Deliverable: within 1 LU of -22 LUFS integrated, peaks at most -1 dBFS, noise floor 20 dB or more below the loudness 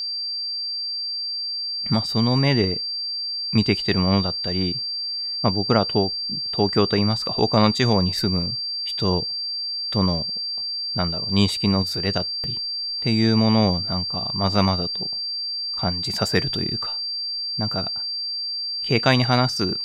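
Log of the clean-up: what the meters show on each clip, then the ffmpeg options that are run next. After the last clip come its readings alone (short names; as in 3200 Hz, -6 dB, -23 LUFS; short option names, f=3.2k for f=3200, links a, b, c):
steady tone 4700 Hz; tone level -25 dBFS; loudness -22.0 LUFS; peak -3.0 dBFS; loudness target -22.0 LUFS
-> -af "bandreject=f=4.7k:w=30"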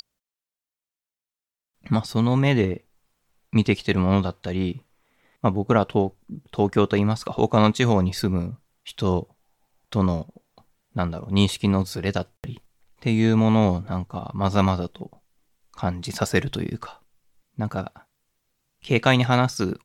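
steady tone none; loudness -23.0 LUFS; peak -3.5 dBFS; loudness target -22.0 LUFS
-> -af "volume=1dB"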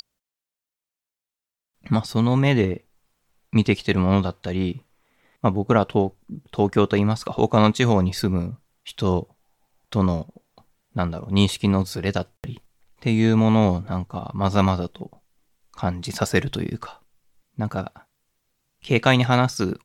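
loudness -22.0 LUFS; peak -2.5 dBFS; noise floor -89 dBFS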